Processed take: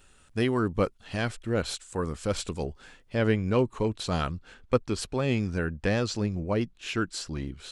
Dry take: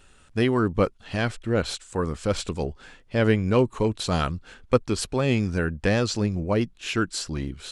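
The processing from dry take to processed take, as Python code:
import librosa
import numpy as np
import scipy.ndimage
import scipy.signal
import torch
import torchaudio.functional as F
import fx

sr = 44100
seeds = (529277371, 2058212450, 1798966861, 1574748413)

y = fx.high_shelf(x, sr, hz=8900.0, db=fx.steps((0.0, 7.5), (3.15, -4.5)))
y = y * 10.0 ** (-4.0 / 20.0)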